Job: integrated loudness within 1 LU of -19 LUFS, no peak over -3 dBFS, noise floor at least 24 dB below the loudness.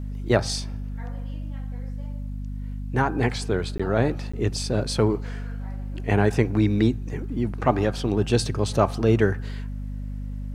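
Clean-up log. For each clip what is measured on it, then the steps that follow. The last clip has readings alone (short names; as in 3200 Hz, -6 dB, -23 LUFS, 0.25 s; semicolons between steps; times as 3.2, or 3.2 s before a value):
dropouts 2; longest dropout 15 ms; hum 50 Hz; harmonics up to 250 Hz; hum level -29 dBFS; loudness -25.5 LUFS; peak -4.0 dBFS; loudness target -19.0 LUFS
-> interpolate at 3.78/4.32, 15 ms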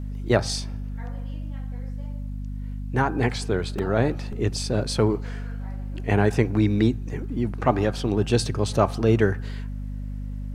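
dropouts 0; hum 50 Hz; harmonics up to 250 Hz; hum level -29 dBFS
-> notches 50/100/150/200/250 Hz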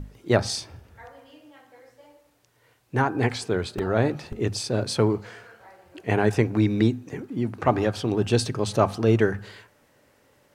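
hum none; loudness -24.5 LUFS; peak -4.5 dBFS; loudness target -19.0 LUFS
-> gain +5.5 dB; limiter -3 dBFS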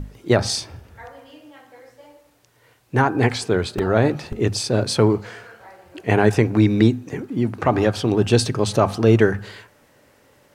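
loudness -19.5 LUFS; peak -3.0 dBFS; noise floor -57 dBFS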